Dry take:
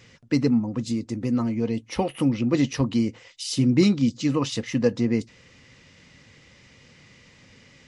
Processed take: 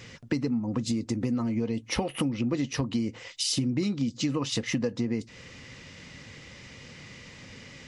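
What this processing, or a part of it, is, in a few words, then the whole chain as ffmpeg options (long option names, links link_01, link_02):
serial compression, leveller first: -af "acompressor=threshold=-27dB:ratio=1.5,acompressor=threshold=-31dB:ratio=6,volume=6dB"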